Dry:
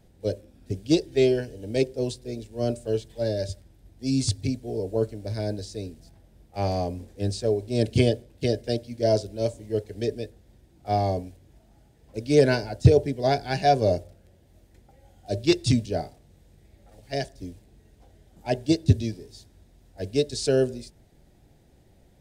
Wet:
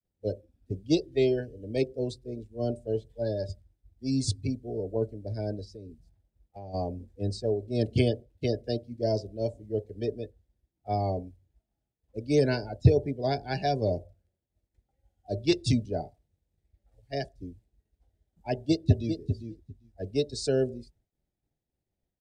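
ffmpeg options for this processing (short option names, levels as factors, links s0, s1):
-filter_complex "[0:a]asplit=3[s0][s1][s2];[s0]afade=t=out:st=5.64:d=0.02[s3];[s1]acompressor=threshold=0.0178:ratio=6:attack=3.2:release=140:knee=1:detection=peak,afade=t=in:st=5.64:d=0.02,afade=t=out:st=6.73:d=0.02[s4];[s2]afade=t=in:st=6.73:d=0.02[s5];[s3][s4][s5]amix=inputs=3:normalize=0,asplit=2[s6][s7];[s7]afade=t=in:st=18.5:d=0.01,afade=t=out:st=19.19:d=0.01,aecho=0:1:400|800:0.398107|0.0597161[s8];[s6][s8]amix=inputs=2:normalize=0,agate=range=0.0224:threshold=0.00316:ratio=3:detection=peak,afftdn=nr=17:nf=-38,acrossover=split=420|3000[s9][s10][s11];[s10]acompressor=threshold=0.0631:ratio=6[s12];[s9][s12][s11]amix=inputs=3:normalize=0,volume=0.668"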